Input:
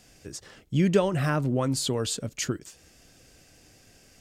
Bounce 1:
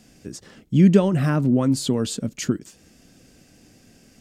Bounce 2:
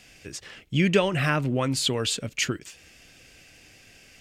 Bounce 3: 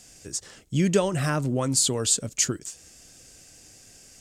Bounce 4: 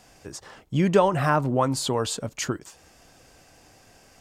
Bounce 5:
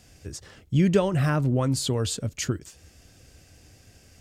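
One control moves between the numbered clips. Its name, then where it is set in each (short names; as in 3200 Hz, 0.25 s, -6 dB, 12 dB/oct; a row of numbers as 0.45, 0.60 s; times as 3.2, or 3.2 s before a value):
bell, frequency: 220, 2500, 7700, 920, 78 Hz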